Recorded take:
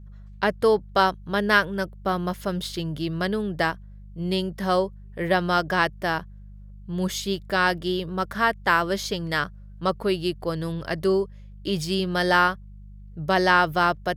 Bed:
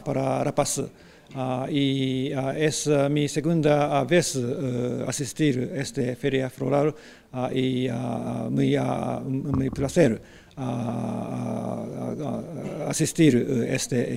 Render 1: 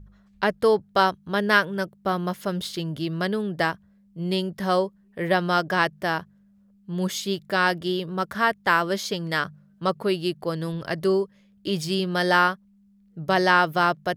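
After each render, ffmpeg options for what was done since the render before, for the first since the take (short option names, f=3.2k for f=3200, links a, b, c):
-af "bandreject=f=50:t=h:w=4,bandreject=f=100:t=h:w=4,bandreject=f=150:t=h:w=4"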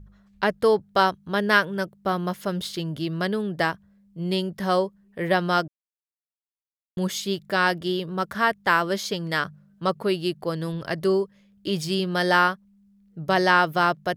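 -filter_complex "[0:a]asplit=3[a][b][c];[a]atrim=end=5.68,asetpts=PTS-STARTPTS,afade=t=out:st=5.676:d=0.004:c=hsin[d];[b]atrim=start=5.68:end=6.97,asetpts=PTS-STARTPTS,volume=0[e];[c]atrim=start=6.97,asetpts=PTS-STARTPTS,afade=t=in:d=0.004:c=hsin[f];[d][e][f]concat=n=3:v=0:a=1"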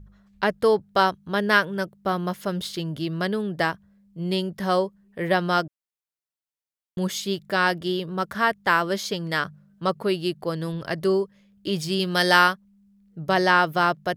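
-filter_complex "[0:a]asplit=3[a][b][c];[a]afade=t=out:st=11.99:d=0.02[d];[b]highshelf=f=2.3k:g=9,afade=t=in:st=11.99:d=0.02,afade=t=out:st=12.52:d=0.02[e];[c]afade=t=in:st=12.52:d=0.02[f];[d][e][f]amix=inputs=3:normalize=0"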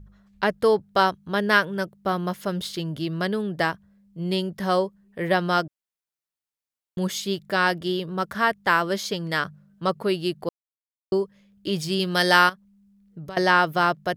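-filter_complex "[0:a]asettb=1/sr,asplit=3[a][b][c];[a]atrim=end=12.494[d];[b]atrim=start=12.49:end=13.37,asetpts=PTS-STARTPTS,afade=t=in:d=0.004:c=qsin,afade=t=out:st=0.876:d=0.004:c=qsin,acompressor=threshold=-33dB:ratio=6:attack=3.2:release=140:knee=1:detection=peak[e];[c]atrim=start=13.366[f];[d][e]acrossfade=d=0.004:c1=hsin:c2=qsin[g];[g][f]acrossfade=d=0.004:c1=qsin:c2=hsin,asplit=3[h][i][j];[h]atrim=end=10.49,asetpts=PTS-STARTPTS,afade=t=out:st=10.486:d=0.004:c=hsin[k];[i]atrim=start=10.49:end=11.12,asetpts=PTS-STARTPTS,volume=0[l];[j]atrim=start=11.12,asetpts=PTS-STARTPTS,afade=t=in:d=0.004:c=hsin[m];[k][l][m]concat=n=3:v=0:a=1"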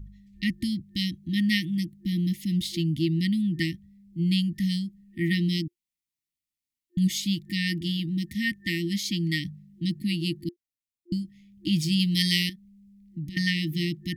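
-af "lowshelf=f=350:g=5.5,afftfilt=real='re*(1-between(b*sr/4096,350,1800))':imag='im*(1-between(b*sr/4096,350,1800))':win_size=4096:overlap=0.75"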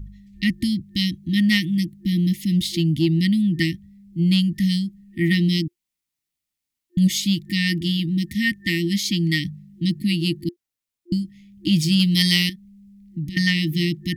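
-af "acontrast=60"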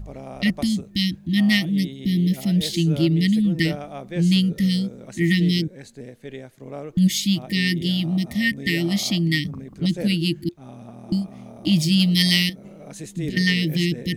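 -filter_complex "[1:a]volume=-12.5dB[a];[0:a][a]amix=inputs=2:normalize=0"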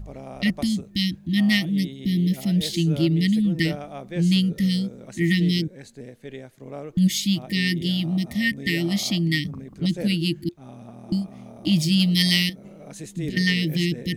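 -af "volume=-1.5dB"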